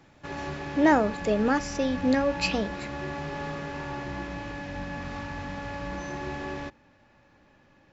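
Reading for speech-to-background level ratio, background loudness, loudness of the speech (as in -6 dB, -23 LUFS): 10.0 dB, -35.5 LUFS, -25.5 LUFS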